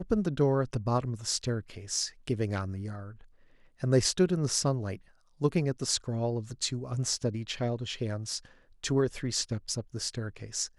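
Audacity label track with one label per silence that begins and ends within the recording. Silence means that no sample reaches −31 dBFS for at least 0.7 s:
2.990000	3.830000	silence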